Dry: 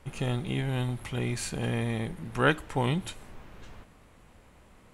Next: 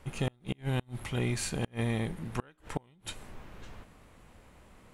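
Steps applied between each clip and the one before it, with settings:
gate with flip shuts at −19 dBFS, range −34 dB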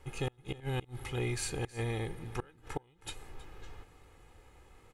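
comb filter 2.4 ms, depth 63%
single-tap delay 319 ms −18.5 dB
level −4 dB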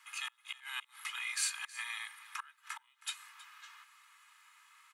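Butterworth high-pass 1,000 Hz 72 dB per octave
level +4.5 dB

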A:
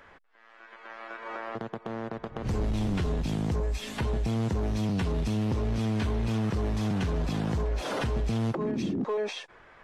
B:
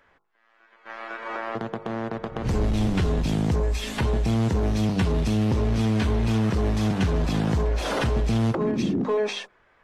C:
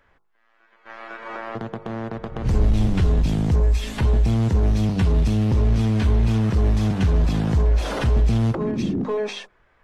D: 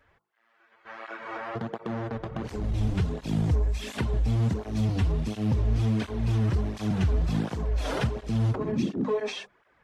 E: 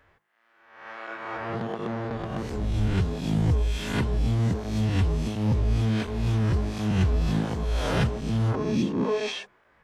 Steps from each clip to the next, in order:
hum removal 50.59 Hz, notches 28; noise gate −45 dBFS, range −13 dB; level +6 dB
low-shelf EQ 110 Hz +11 dB; level −1.5 dB
downward compressor, threshold −19 dBFS, peak gain reduction 6.5 dB; through-zero flanger with one copy inverted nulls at 1.4 Hz, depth 6.1 ms
peak hold with a rise ahead of every peak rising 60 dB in 0.79 s

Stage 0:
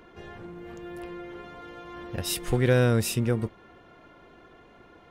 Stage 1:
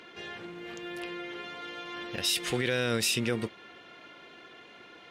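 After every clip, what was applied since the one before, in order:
meter weighting curve D
brickwall limiter −18 dBFS, peak gain reduction 9 dB
low-shelf EQ 65 Hz −9.5 dB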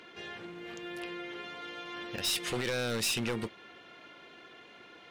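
wavefolder on the positive side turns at −23.5 dBFS
level −2 dB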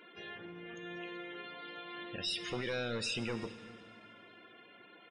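spectral peaks only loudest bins 64
single-tap delay 381 ms −23.5 dB
on a send at −11 dB: convolution reverb RT60 1.9 s, pre-delay 3 ms
on the sum: level −4 dB

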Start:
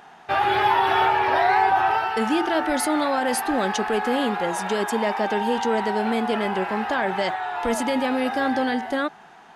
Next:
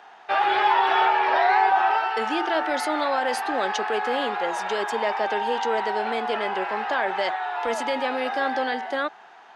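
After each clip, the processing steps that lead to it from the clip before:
three-way crossover with the lows and the highs turned down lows −19 dB, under 350 Hz, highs −15 dB, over 6,500 Hz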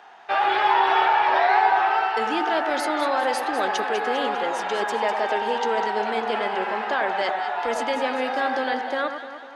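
delay that swaps between a low-pass and a high-pass 100 ms, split 1,500 Hz, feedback 73%, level −7 dB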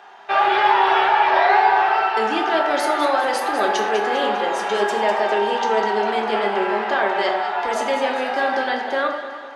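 convolution reverb, pre-delay 3 ms, DRR 2.5 dB
level +2 dB

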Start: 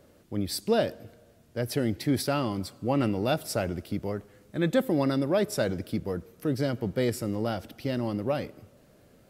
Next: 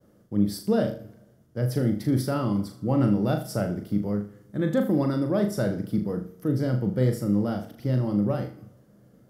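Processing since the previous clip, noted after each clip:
downward expander −55 dBFS
thirty-one-band graphic EQ 125 Hz +12 dB, 200 Hz +11 dB, 315 Hz +5 dB, 500 Hz +3 dB, 1,250 Hz +3 dB, 2,500 Hz −11 dB, 4,000 Hz −7 dB, 8,000 Hz −4 dB
on a send: flutter between parallel walls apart 6.7 metres, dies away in 0.38 s
on the sum: level −3.5 dB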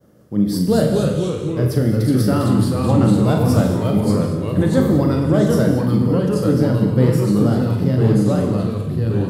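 mains-hum notches 50/100 Hz
delay with pitch and tempo change per echo 156 ms, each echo −2 semitones, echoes 3
reverb whose tail is shaped and stops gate 260 ms flat, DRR 5.5 dB
level +6 dB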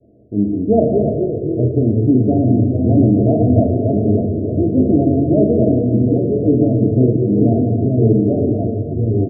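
Chebyshev low-pass with heavy ripple 700 Hz, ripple 6 dB
comb filter 2.9 ms, depth 88%
single-tap delay 297 ms −11 dB
level +5 dB

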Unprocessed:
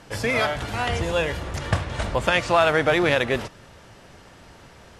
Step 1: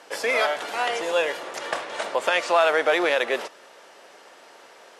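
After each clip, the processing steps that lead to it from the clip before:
in parallel at −0.5 dB: brickwall limiter −14 dBFS, peak gain reduction 9 dB
on the sum: four-pole ladder high-pass 340 Hz, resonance 20%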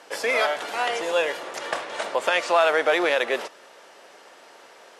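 no processing that can be heard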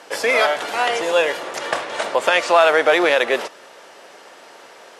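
low-shelf EQ 100 Hz +7.5 dB
level +5.5 dB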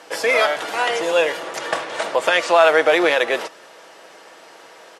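comb filter 6.2 ms, depth 31%
level −1 dB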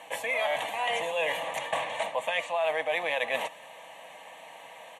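phaser with its sweep stopped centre 1,400 Hz, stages 6
reversed playback
downward compressor 6 to 1, threshold −26 dBFS, peak gain reduction 14 dB
reversed playback

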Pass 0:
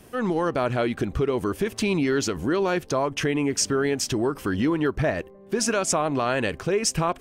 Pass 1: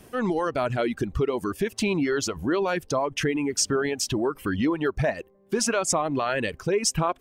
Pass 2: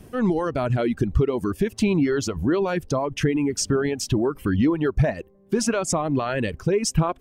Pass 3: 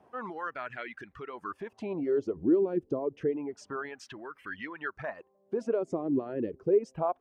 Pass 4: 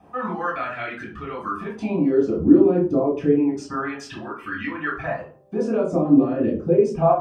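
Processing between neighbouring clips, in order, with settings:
reverb reduction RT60 1.3 s
low-shelf EQ 310 Hz +11.5 dB; level −2 dB
LFO wah 0.28 Hz 330–1,900 Hz, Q 2.9
convolution reverb RT60 0.45 s, pre-delay 3 ms, DRR −3 dB; level +1.5 dB

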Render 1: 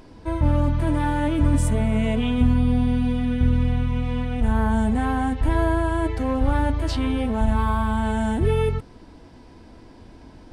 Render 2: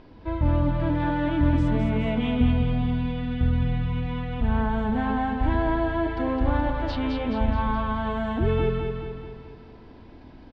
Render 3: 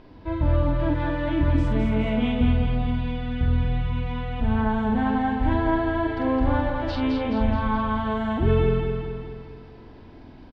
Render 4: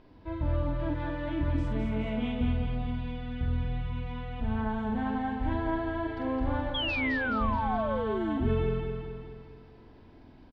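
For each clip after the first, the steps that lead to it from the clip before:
low-pass filter 4,200 Hz 24 dB per octave; on a send: repeating echo 212 ms, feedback 52%, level −5 dB; on the sum: level −3 dB
double-tracking delay 46 ms −4.5 dB
sound drawn into the spectrogram fall, 0:06.74–0:08.55, 210–3,400 Hz −24 dBFS; level −8 dB

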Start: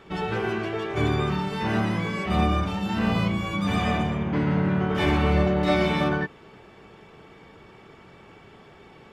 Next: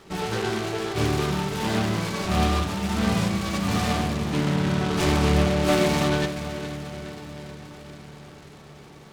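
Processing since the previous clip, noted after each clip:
feedback delay with all-pass diffusion 483 ms, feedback 59%, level −12 dB
on a send at −12.5 dB: convolution reverb RT60 1.0 s, pre-delay 75 ms
on the sum: short delay modulated by noise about 2,000 Hz, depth 0.086 ms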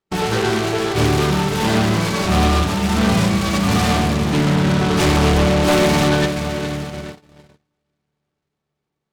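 noise gate −34 dBFS, range −42 dB
sine wavefolder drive 7 dB, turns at −8 dBFS
level −2 dB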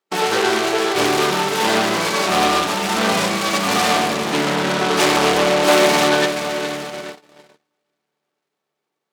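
high-pass filter 380 Hz 12 dB per octave
level +3.5 dB

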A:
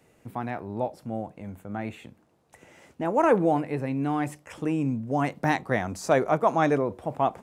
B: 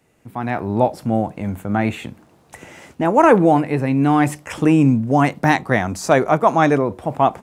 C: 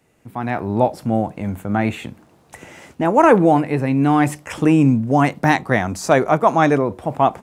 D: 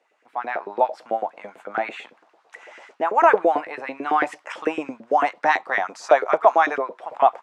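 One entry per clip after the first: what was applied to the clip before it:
parametric band 510 Hz −3 dB 0.75 octaves; automatic gain control gain up to 15 dB
no processing that can be heard
auto-filter high-pass saw up 9 Hz 430–1,800 Hz; band-pass filter 180–5,000 Hz; level −5 dB

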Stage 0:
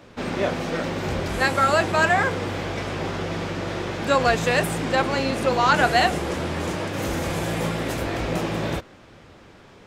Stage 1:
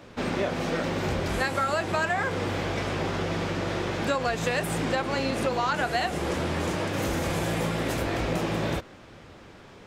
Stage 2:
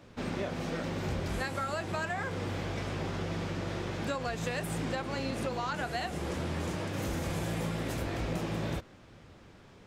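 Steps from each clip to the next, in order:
downward compressor 6 to 1, threshold −23 dBFS, peak gain reduction 10 dB
bass and treble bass +5 dB, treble +2 dB; level −8.5 dB

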